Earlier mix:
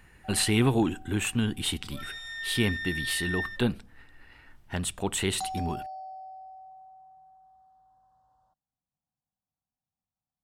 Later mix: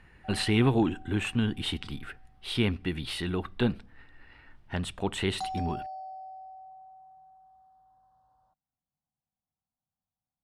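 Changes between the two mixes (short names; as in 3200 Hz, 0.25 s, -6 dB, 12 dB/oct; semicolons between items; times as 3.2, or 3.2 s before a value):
speech: add air absorption 66 m; second sound: muted; master: add bell 7100 Hz -6.5 dB 0.7 oct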